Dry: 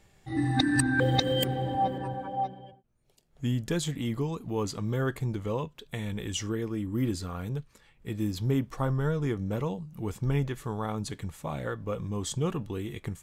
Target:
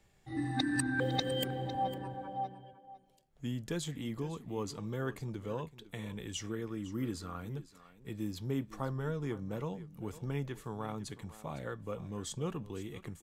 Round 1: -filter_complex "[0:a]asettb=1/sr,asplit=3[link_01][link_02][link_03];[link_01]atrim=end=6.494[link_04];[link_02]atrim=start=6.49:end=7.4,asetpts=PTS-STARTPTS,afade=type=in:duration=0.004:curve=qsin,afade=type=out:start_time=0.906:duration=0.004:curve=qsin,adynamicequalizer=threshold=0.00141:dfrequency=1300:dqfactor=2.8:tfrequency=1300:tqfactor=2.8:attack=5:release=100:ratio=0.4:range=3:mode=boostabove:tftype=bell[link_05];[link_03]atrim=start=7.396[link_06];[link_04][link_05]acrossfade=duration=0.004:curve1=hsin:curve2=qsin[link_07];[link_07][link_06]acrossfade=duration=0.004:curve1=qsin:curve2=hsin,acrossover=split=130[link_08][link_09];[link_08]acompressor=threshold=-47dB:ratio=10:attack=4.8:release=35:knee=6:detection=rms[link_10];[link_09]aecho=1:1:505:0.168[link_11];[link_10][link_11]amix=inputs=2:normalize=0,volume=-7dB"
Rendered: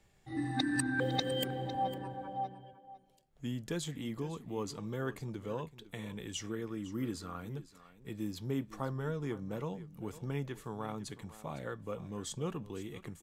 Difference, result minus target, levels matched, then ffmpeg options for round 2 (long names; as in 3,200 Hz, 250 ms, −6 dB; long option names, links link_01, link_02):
downward compressor: peak gain reduction +6 dB
-filter_complex "[0:a]asettb=1/sr,asplit=3[link_01][link_02][link_03];[link_01]atrim=end=6.494[link_04];[link_02]atrim=start=6.49:end=7.4,asetpts=PTS-STARTPTS,afade=type=in:duration=0.004:curve=qsin,afade=type=out:start_time=0.906:duration=0.004:curve=qsin,adynamicequalizer=threshold=0.00141:dfrequency=1300:dqfactor=2.8:tfrequency=1300:tqfactor=2.8:attack=5:release=100:ratio=0.4:range=3:mode=boostabove:tftype=bell[link_05];[link_03]atrim=start=7.396[link_06];[link_04][link_05]acrossfade=duration=0.004:curve1=hsin:curve2=qsin[link_07];[link_07][link_06]acrossfade=duration=0.004:curve1=qsin:curve2=hsin,acrossover=split=130[link_08][link_09];[link_08]acompressor=threshold=-40.5dB:ratio=10:attack=4.8:release=35:knee=6:detection=rms[link_10];[link_09]aecho=1:1:505:0.168[link_11];[link_10][link_11]amix=inputs=2:normalize=0,volume=-7dB"